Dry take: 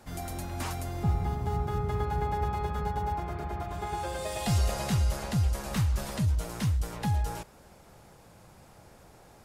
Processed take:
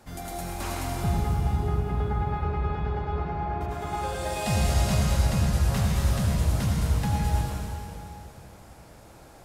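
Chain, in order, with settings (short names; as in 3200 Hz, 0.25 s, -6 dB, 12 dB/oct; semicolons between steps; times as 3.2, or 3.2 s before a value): 1.4–3.61 air absorption 250 m; reverb RT60 2.8 s, pre-delay 69 ms, DRR -3 dB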